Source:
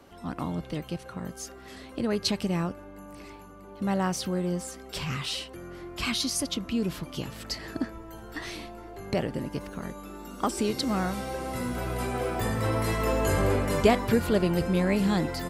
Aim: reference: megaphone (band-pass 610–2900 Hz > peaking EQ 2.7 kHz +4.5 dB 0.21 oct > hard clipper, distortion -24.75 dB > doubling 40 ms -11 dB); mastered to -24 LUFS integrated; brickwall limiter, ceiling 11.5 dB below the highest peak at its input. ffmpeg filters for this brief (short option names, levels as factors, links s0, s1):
-filter_complex "[0:a]alimiter=limit=0.126:level=0:latency=1,highpass=610,lowpass=2900,equalizer=f=2700:t=o:w=0.21:g=4.5,asoftclip=type=hard:threshold=0.0596,asplit=2[s0][s1];[s1]adelay=40,volume=0.282[s2];[s0][s2]amix=inputs=2:normalize=0,volume=4.47"